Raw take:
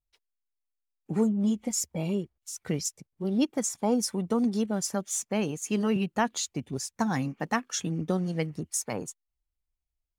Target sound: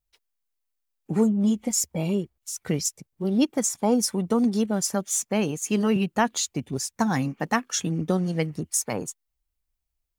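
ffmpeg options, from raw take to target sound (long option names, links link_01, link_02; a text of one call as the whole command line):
ffmpeg -i in.wav -af "highshelf=frequency=12000:gain=6,volume=4dB" out.wav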